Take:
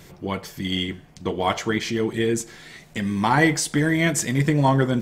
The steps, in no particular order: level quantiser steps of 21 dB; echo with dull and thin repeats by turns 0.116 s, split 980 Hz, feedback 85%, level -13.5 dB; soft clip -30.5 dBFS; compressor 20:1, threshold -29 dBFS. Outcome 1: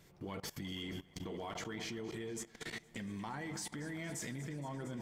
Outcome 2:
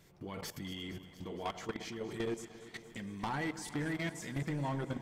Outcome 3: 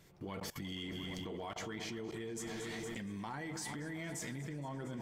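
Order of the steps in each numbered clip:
compressor > echo with dull and thin repeats by turns > level quantiser > soft clip; level quantiser > compressor > soft clip > echo with dull and thin repeats by turns; echo with dull and thin repeats by turns > compressor > level quantiser > soft clip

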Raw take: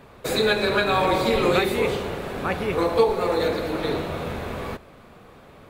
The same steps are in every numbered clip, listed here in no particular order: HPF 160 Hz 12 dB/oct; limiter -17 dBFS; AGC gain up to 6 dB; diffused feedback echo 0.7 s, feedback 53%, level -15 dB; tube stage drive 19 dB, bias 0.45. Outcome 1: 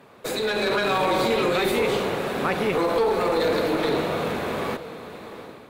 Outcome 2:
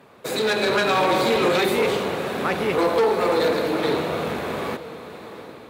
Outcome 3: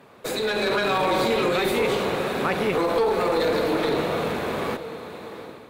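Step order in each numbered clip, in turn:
limiter > HPF > tube stage > diffused feedback echo > AGC; tube stage > HPF > limiter > AGC > diffused feedback echo; diffused feedback echo > limiter > HPF > tube stage > AGC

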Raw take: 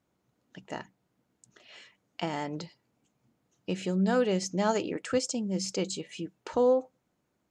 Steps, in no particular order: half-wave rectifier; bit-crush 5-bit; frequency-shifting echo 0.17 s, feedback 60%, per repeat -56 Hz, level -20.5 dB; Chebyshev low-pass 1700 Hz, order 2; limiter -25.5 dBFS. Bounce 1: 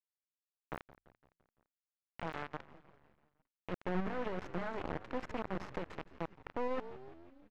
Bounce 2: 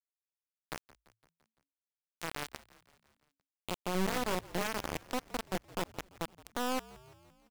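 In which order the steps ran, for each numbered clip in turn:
bit-crush > frequency-shifting echo > limiter > half-wave rectifier > Chebyshev low-pass; half-wave rectifier > limiter > Chebyshev low-pass > bit-crush > frequency-shifting echo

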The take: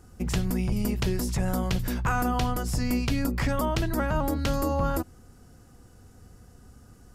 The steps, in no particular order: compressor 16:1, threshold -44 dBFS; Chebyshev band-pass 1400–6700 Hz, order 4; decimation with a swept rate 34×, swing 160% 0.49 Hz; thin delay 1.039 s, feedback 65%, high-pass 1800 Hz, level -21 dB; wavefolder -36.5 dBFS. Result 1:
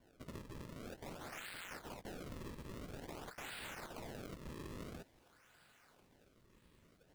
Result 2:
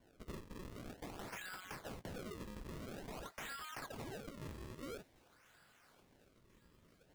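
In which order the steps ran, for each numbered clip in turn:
wavefolder > Chebyshev band-pass > decimation with a swept rate > compressor > thin delay; Chebyshev band-pass > wavefolder > compressor > decimation with a swept rate > thin delay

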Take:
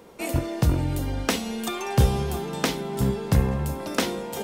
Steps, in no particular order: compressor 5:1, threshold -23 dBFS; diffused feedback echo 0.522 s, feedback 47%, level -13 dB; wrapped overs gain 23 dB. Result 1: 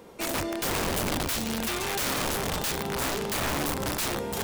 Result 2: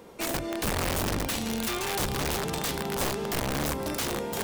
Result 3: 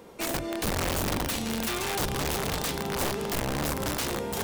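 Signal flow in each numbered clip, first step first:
diffused feedback echo > wrapped overs > compressor; compressor > diffused feedback echo > wrapped overs; diffused feedback echo > compressor > wrapped overs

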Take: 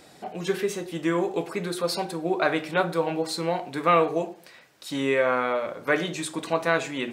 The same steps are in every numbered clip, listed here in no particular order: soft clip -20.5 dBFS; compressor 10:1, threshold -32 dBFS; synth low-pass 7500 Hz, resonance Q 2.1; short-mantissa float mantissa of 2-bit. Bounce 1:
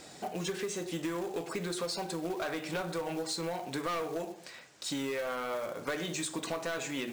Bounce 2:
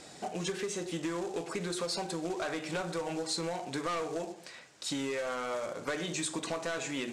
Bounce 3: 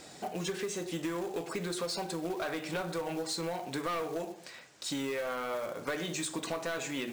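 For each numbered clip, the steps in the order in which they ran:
soft clip > synth low-pass > short-mantissa float > compressor; soft clip > short-mantissa float > compressor > synth low-pass; synth low-pass > soft clip > short-mantissa float > compressor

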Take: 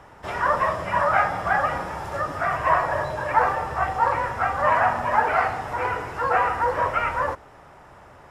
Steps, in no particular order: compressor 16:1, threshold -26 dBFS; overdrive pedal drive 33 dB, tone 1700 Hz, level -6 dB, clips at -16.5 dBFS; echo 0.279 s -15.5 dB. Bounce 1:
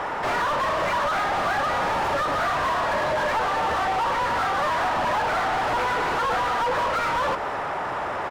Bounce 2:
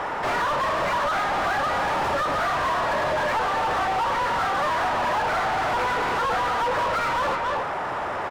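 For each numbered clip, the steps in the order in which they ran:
compressor > overdrive pedal > echo; echo > compressor > overdrive pedal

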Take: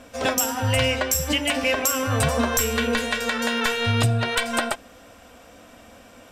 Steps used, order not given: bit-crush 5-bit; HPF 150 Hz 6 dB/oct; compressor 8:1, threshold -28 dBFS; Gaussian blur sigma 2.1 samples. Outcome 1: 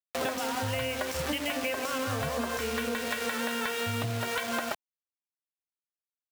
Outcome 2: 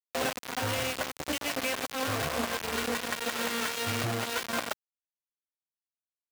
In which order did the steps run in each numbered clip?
Gaussian blur > bit-crush > HPF > compressor; compressor > Gaussian blur > bit-crush > HPF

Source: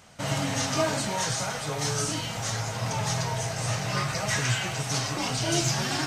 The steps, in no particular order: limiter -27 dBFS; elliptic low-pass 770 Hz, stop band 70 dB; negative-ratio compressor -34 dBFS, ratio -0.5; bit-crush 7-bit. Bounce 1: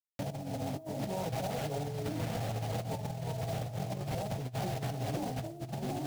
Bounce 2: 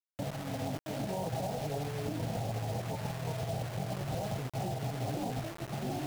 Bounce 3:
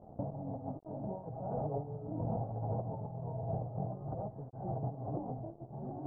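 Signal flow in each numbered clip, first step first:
elliptic low-pass > bit-crush > negative-ratio compressor > limiter; elliptic low-pass > negative-ratio compressor > bit-crush > limiter; negative-ratio compressor > bit-crush > elliptic low-pass > limiter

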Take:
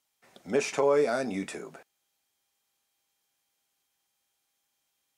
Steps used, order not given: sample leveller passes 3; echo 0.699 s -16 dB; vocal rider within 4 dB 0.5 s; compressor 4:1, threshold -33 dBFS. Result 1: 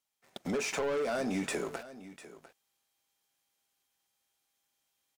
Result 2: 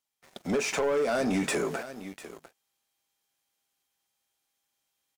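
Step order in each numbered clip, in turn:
sample leveller > vocal rider > compressor > echo; vocal rider > compressor > echo > sample leveller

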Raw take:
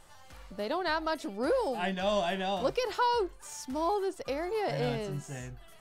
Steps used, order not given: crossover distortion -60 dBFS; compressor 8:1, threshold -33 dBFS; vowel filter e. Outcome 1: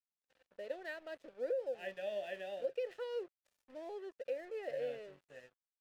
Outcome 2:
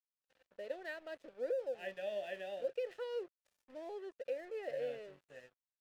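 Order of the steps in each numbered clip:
vowel filter > crossover distortion > compressor; vowel filter > compressor > crossover distortion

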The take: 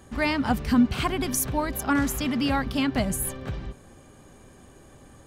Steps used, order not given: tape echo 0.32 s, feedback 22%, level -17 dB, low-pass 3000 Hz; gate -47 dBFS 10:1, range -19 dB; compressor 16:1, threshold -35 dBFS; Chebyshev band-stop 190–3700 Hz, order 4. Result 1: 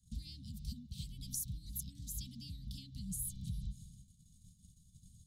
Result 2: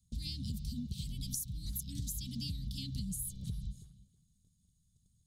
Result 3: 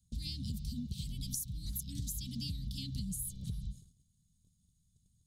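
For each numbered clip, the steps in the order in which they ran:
gate > tape echo > compressor > Chebyshev band-stop; Chebyshev band-stop > gate > tape echo > compressor; Chebyshev band-stop > tape echo > compressor > gate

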